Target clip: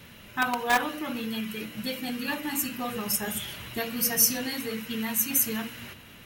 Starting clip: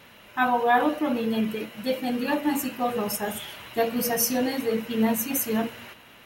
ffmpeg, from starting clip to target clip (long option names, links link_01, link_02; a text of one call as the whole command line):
ffmpeg -i in.wav -filter_complex "[0:a]bass=frequency=250:gain=10,treble=frequency=4000:gain=4,bandreject=frequency=50:width_type=h:width=6,bandreject=frequency=100:width_type=h:width=6,bandreject=frequency=150:width_type=h:width=6,bandreject=frequency=200:width_type=h:width=6,bandreject=frequency=250:width_type=h:width=6,bandreject=frequency=300:width_type=h:width=6,acrossover=split=700|920[link_01][link_02][link_03];[link_01]acompressor=threshold=-32dB:ratio=6[link_04];[link_02]acrusher=bits=3:mix=0:aa=0.000001[link_05];[link_04][link_05][link_03]amix=inputs=3:normalize=0" out.wav